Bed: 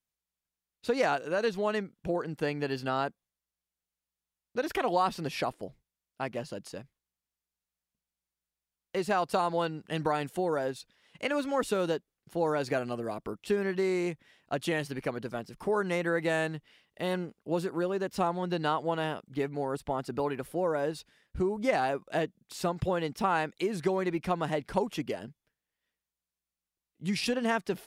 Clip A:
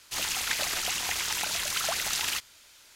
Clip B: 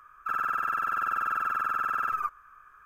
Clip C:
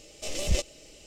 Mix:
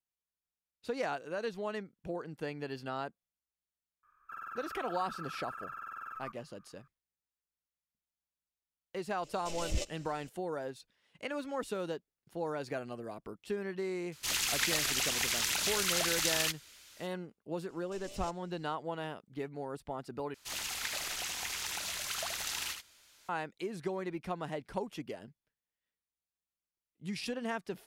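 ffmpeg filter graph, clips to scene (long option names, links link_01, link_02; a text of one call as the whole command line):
ffmpeg -i bed.wav -i cue0.wav -i cue1.wav -i cue2.wav -filter_complex "[3:a]asplit=2[link_01][link_02];[1:a]asplit=2[link_03][link_04];[0:a]volume=-8dB[link_05];[link_03]equalizer=frequency=770:width_type=o:width=1.1:gain=-5[link_06];[link_04]aecho=1:1:75:0.447[link_07];[link_05]asplit=2[link_08][link_09];[link_08]atrim=end=20.344[link_10];[link_07]atrim=end=2.95,asetpts=PTS-STARTPTS,volume=-8.5dB[link_11];[link_09]atrim=start=23.286[link_12];[2:a]atrim=end=2.85,asetpts=PTS-STARTPTS,volume=-15.5dB,afade=type=in:duration=0.004:curve=hsin,afade=type=out:start_time=2.846:duration=0.004:curve=hsin,adelay=4030[link_13];[link_01]atrim=end=1.06,asetpts=PTS-STARTPTS,volume=-8dB,afade=type=in:duration=0.004:curve=hsin,afade=type=out:start_time=1.056:duration=0.004:curve=hsin,adelay=9230[link_14];[link_06]atrim=end=2.95,asetpts=PTS-STARTPTS,volume=-1.5dB,afade=type=in:duration=0.004:curve=hsin,afade=type=out:start_time=2.946:duration=0.004:curve=hsin,adelay=622692S[link_15];[link_02]atrim=end=1.06,asetpts=PTS-STARTPTS,volume=-17.5dB,afade=type=in:duration=0.004:curve=hsin,afade=type=out:start_time=1.056:duration=0.004:curve=hsin,adelay=17690[link_16];[link_10][link_11]acrossfade=duration=0.004:curve1=hsin:curve2=hsin[link_17];[link_17][link_12]acrossfade=duration=0.004:curve1=hsin:curve2=hsin[link_18];[link_18][link_13][link_14][link_15][link_16]amix=inputs=5:normalize=0" out.wav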